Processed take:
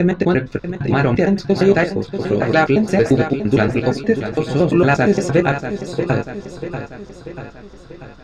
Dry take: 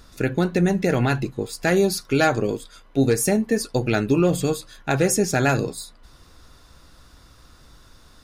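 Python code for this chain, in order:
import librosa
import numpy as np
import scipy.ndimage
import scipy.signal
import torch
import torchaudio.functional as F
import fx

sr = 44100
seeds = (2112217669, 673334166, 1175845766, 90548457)

y = fx.block_reorder(x, sr, ms=115.0, group=6)
y = fx.air_absorb(y, sr, metres=180.0)
y = fx.doubler(y, sr, ms=20.0, db=-10)
y = fx.echo_feedback(y, sr, ms=639, feedback_pct=55, wet_db=-10.0)
y = y * librosa.db_to_amplitude(5.5)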